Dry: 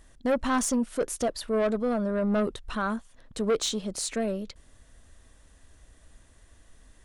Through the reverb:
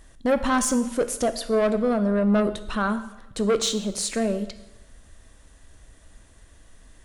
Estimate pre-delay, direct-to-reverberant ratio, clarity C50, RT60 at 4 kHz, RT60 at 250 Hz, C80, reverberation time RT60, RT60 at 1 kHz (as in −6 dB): 6 ms, 10.5 dB, 13.0 dB, 0.90 s, 1.0 s, 15.0 dB, 0.95 s, 0.95 s